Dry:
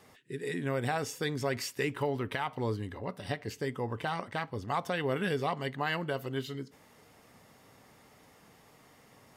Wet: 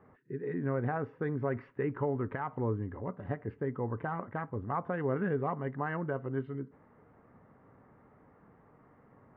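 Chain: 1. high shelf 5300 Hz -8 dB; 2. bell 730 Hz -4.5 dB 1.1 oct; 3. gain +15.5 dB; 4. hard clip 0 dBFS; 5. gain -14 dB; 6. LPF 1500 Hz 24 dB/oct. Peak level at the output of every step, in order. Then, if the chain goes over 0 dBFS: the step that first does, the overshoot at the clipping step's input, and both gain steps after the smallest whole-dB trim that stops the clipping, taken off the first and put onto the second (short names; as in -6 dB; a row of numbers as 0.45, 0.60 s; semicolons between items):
-20.5, -21.0, -5.5, -5.5, -19.5, -20.0 dBFS; no overload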